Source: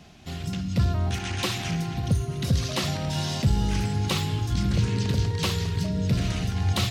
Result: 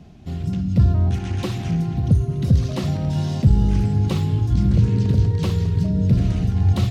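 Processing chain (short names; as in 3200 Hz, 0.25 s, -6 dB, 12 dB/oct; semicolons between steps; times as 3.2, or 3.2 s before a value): tilt shelf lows +8 dB, about 680 Hz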